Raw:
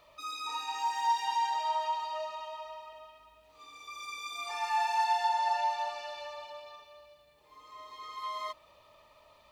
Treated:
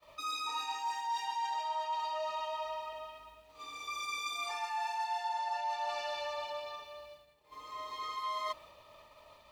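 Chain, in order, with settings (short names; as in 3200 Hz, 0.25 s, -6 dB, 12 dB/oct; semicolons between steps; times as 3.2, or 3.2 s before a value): reverse; compressor 8:1, threshold -39 dBFS, peak gain reduction 15 dB; reverse; expander -56 dBFS; gain +5.5 dB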